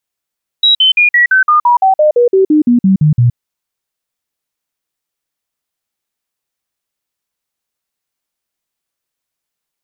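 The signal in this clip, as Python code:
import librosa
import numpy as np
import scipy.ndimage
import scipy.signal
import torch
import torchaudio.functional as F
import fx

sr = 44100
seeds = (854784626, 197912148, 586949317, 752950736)

y = fx.stepped_sweep(sr, from_hz=3860.0, direction='down', per_octave=3, tones=16, dwell_s=0.12, gap_s=0.05, level_db=-5.0)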